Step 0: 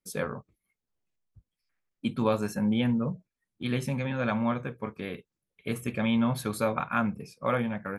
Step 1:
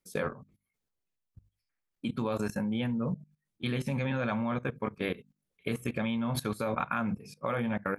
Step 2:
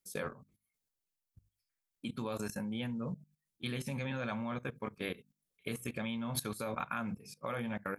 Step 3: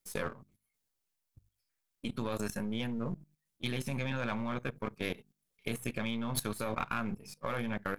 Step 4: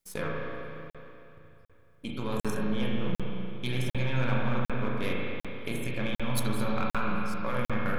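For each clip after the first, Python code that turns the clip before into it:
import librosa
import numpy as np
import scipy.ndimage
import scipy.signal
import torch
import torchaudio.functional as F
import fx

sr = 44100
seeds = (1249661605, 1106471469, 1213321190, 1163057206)

y1 = fx.hum_notches(x, sr, base_hz=50, count=5)
y1 = fx.level_steps(y1, sr, step_db=18)
y1 = y1 * 10.0 ** (5.5 / 20.0)
y2 = fx.high_shelf(y1, sr, hz=3900.0, db=10.5)
y2 = y2 * 10.0 ** (-7.0 / 20.0)
y3 = np.where(y2 < 0.0, 10.0 ** (-7.0 / 20.0) * y2, y2)
y3 = y3 * 10.0 ** (4.5 / 20.0)
y4 = fx.rev_spring(y3, sr, rt60_s=3.0, pass_ms=(32, 38), chirp_ms=50, drr_db=-3.5)
y4 = fx.buffer_crackle(y4, sr, first_s=0.9, period_s=0.75, block=2048, kind='zero')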